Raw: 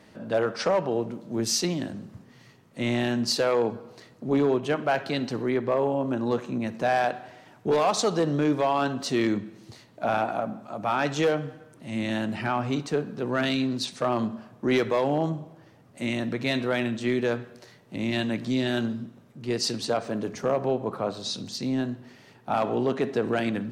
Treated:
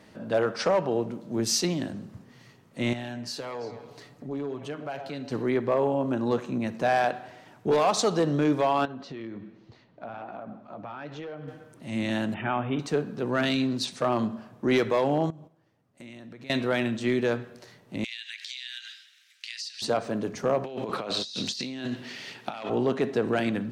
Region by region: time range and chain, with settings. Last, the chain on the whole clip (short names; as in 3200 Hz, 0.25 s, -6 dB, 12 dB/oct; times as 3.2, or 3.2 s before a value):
2.93–5.32 comb 7 ms, depth 53% + delay with a stepping band-pass 0.111 s, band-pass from 710 Hz, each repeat 1.4 oct, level -10.5 dB + compressor 2:1, threshold -41 dBFS
8.85–11.48 flange 1.2 Hz, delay 1.3 ms, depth 7.9 ms, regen +65% + compressor, threshold -34 dBFS + air absorption 210 m
12.34–12.79 G.711 law mismatch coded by A + Chebyshev low-pass 3600 Hz, order 10
15.3–16.5 gate -44 dBFS, range -15 dB + compressor, threshold -43 dBFS
18.04–19.82 steep high-pass 1600 Hz 48 dB/oct + bell 3900 Hz +14 dB 2.5 oct + compressor 16:1, threshold -33 dBFS
20.64–22.7 weighting filter D + negative-ratio compressor -34 dBFS
whole clip: dry